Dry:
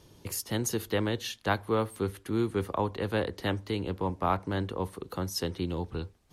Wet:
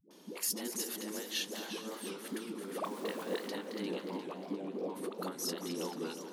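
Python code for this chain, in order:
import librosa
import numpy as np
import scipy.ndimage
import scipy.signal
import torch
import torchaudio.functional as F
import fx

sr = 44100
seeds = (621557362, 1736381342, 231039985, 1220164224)

y = fx.over_compress(x, sr, threshold_db=-33.0, ratio=-0.5)
y = fx.steep_lowpass(y, sr, hz=780.0, slope=96, at=(4.24, 4.79))
y = fx.echo_feedback(y, sr, ms=220, feedback_pct=53, wet_db=-11.5)
y = fx.quant_dither(y, sr, seeds[0], bits=8, dither='none', at=(2.72, 3.38))
y = fx.brickwall_highpass(y, sr, low_hz=180.0)
y = fx.dispersion(y, sr, late='highs', ms=108.0, hz=370.0)
y = fx.echo_warbled(y, sr, ms=356, feedback_pct=59, rate_hz=2.8, cents=132, wet_db=-10)
y = y * 10.0 ** (-3.0 / 20.0)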